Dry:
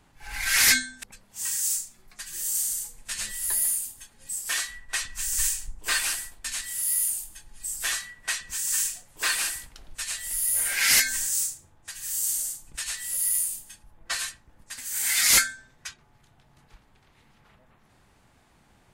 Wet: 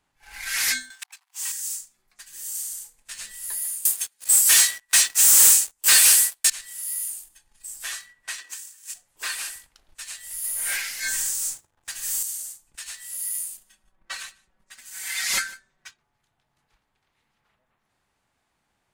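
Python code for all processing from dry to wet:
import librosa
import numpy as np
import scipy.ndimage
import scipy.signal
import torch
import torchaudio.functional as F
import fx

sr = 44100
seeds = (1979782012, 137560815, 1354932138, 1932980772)

y = fx.chain(x, sr, fx.leveller(passes=3),
    fx.cheby_ripple_highpass(hz=730.0, ripple_db=3), at=(0.9, 1.52))
y = fx.chain(y, sr, fx.tilt_eq(slope=4.0),
    fx.leveller(passes=3), at=(3.85, 6.5))
y = fx.chain(y, sr, fx.steep_highpass(hz=270.0, slope=72),
    fx.over_compress(threshold_db=-33.0, ratio=-0.5), at=(8.38, 8.94))
y = fx.chain(y, sr, fx.halfwave_gain(db=-3.0),
    fx.over_compress(threshold_db=-30.0, ratio=-1.0),
    fx.leveller(passes=2), at=(10.44, 12.23))
y = fx.chain(y, sr, fx.high_shelf(hz=5800.0, db=-8.5),
    fx.comb(ms=5.3, depth=0.94),
    fx.echo_single(ms=152, db=-20.5), at=(13.57, 15.88))
y = fx.leveller(y, sr, passes=1)
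y = fx.low_shelf(y, sr, hz=420.0, db=-8.5)
y = y * librosa.db_to_amplitude(-8.0)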